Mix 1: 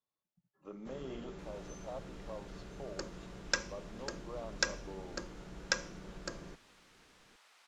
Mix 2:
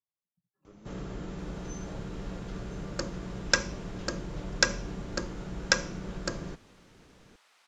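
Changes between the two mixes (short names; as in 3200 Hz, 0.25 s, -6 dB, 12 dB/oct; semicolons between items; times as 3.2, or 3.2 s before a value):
speech -9.5 dB; first sound +8.0 dB; master: add bell 100 Hz +5.5 dB 2.2 oct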